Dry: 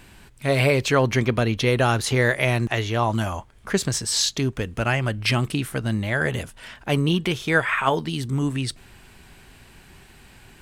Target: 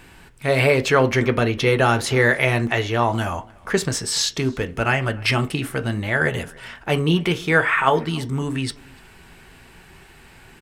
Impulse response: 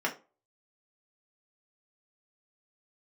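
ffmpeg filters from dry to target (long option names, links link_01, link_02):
-filter_complex "[0:a]asplit=2[link_01][link_02];[link_02]adelay=291.5,volume=-25dB,highshelf=frequency=4000:gain=-6.56[link_03];[link_01][link_03]amix=inputs=2:normalize=0,asplit=2[link_04][link_05];[1:a]atrim=start_sample=2205,lowpass=6800[link_06];[link_05][link_06]afir=irnorm=-1:irlink=0,volume=-11dB[link_07];[link_04][link_07]amix=inputs=2:normalize=0"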